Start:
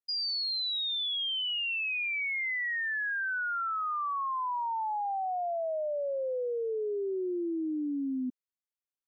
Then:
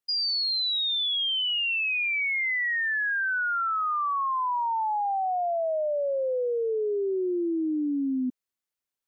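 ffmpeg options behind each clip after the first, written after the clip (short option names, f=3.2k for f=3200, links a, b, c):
-af "acontrast=32"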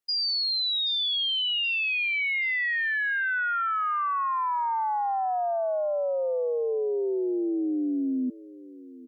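-af "aecho=1:1:778|1556|2334:0.112|0.046|0.0189"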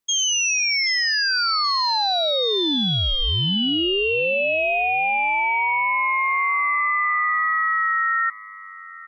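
-af "aeval=exprs='val(0)*sin(2*PI*1600*n/s)':c=same,volume=9dB"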